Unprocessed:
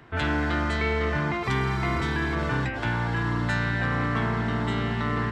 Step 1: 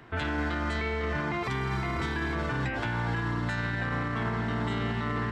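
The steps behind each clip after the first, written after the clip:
mains-hum notches 50/100/150 Hz
brickwall limiter −22 dBFS, peak gain reduction 7.5 dB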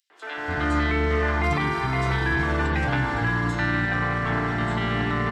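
three-band delay without the direct sound highs, mids, lows 100/360 ms, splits 370/4,600 Hz
automatic gain control gain up to 9 dB
convolution reverb RT60 0.35 s, pre-delay 3 ms, DRR 9 dB
level −2.5 dB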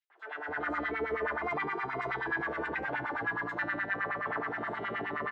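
auto-filter band-pass sine 9.5 Hz 410–2,000 Hz
level −2 dB

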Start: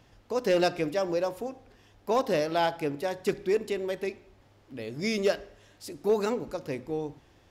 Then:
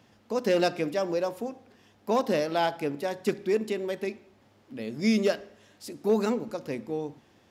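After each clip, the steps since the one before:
high-pass filter 120 Hz 12 dB per octave
parametric band 220 Hz +10 dB 0.21 octaves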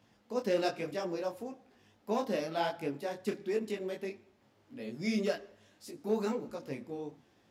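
micro pitch shift up and down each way 37 cents
level −3 dB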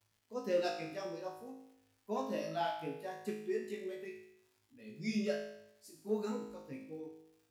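spectral dynamics exaggerated over time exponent 1.5
surface crackle 190 per second −56 dBFS
tuned comb filter 53 Hz, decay 0.78 s, harmonics all, mix 90%
level +8.5 dB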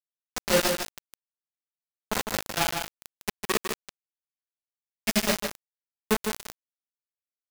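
spectral envelope flattened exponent 0.6
bit reduction 5 bits
single-tap delay 154 ms −6 dB
level +8.5 dB

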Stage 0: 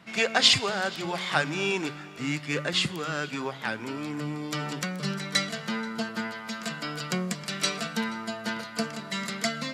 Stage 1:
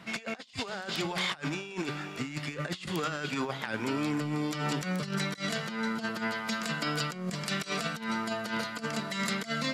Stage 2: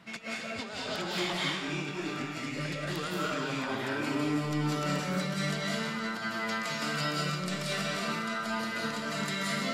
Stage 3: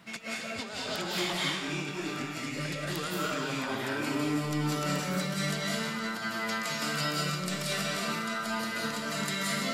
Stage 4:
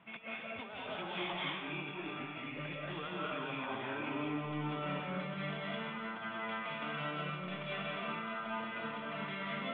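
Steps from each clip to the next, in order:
compressor whose output falls as the input rises −33 dBFS, ratio −0.5
convolution reverb RT60 1.0 s, pre-delay 138 ms, DRR −5.5 dB; level −5.5 dB
high-shelf EQ 8,600 Hz +11 dB
Chebyshev low-pass with heavy ripple 3,500 Hz, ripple 6 dB; level −3 dB

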